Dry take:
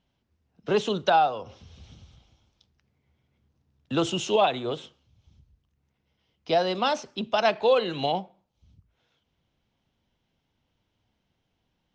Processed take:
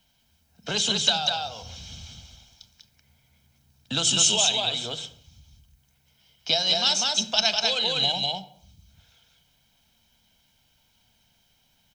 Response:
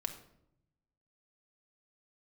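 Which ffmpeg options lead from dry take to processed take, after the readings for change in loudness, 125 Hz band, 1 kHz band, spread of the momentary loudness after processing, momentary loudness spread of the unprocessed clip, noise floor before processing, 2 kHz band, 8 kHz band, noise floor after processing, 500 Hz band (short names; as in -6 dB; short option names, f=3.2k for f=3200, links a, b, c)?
+3.0 dB, 0.0 dB, -6.5 dB, 21 LU, 10 LU, -77 dBFS, +1.5 dB, +19.5 dB, -66 dBFS, -8.5 dB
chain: -filter_complex "[0:a]aecho=1:1:1.3:0.49,aecho=1:1:197:0.708,crystalizer=i=6.5:c=0,acrossover=split=130|3000[a][b][c];[b]acompressor=threshold=-33dB:ratio=4[d];[a][d][c]amix=inputs=3:normalize=0,asplit=2[e][f];[1:a]atrim=start_sample=2205,afade=t=out:st=0.37:d=0.01,atrim=end_sample=16758[g];[f][g]afir=irnorm=-1:irlink=0,volume=-1.5dB[h];[e][h]amix=inputs=2:normalize=0,volume=-4dB"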